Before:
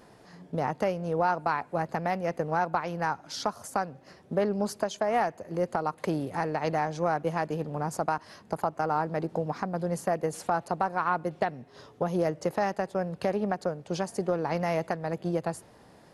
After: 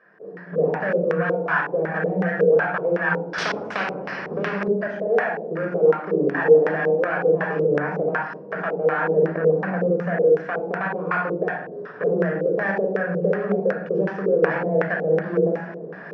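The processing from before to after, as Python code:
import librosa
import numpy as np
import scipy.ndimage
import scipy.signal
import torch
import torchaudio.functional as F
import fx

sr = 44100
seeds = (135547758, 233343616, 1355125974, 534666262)

p1 = fx.tracing_dist(x, sr, depth_ms=0.1)
p2 = fx.recorder_agc(p1, sr, target_db=-18.0, rise_db_per_s=20.0, max_gain_db=30)
p3 = 10.0 ** (-24.5 / 20.0) * np.tanh(p2 / 10.0 ** (-24.5 / 20.0))
p4 = fx.comb(p3, sr, ms=6.4, depth=0.84, at=(1.94, 2.37))
p5 = p4 + fx.echo_single(p4, sr, ms=1019, db=-23.0, dry=0)
p6 = fx.level_steps(p5, sr, step_db=17)
p7 = fx.room_shoebox(p6, sr, seeds[0], volume_m3=2800.0, walls='furnished', distance_m=5.8)
p8 = fx.filter_lfo_lowpass(p7, sr, shape='square', hz=2.7, low_hz=460.0, high_hz=1700.0, q=5.0)
p9 = fx.cabinet(p8, sr, low_hz=180.0, low_slope=24, high_hz=8200.0, hz=(190.0, 270.0, 420.0, 1500.0, 2600.0, 5500.0), db=(4, -4, 4, 6, 5, 10))
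p10 = fx.spectral_comp(p9, sr, ratio=2.0, at=(3.38, 4.68))
y = F.gain(torch.from_numpy(p10), 1.5).numpy()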